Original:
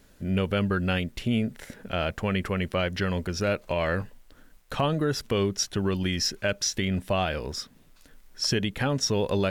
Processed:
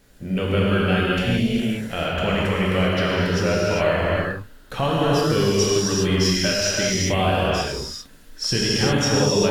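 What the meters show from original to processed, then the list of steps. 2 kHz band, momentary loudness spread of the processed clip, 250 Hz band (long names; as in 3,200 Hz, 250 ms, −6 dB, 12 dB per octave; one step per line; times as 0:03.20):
+7.5 dB, 8 LU, +6.5 dB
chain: reverb whose tail is shaped and stops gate 430 ms flat, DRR −6.5 dB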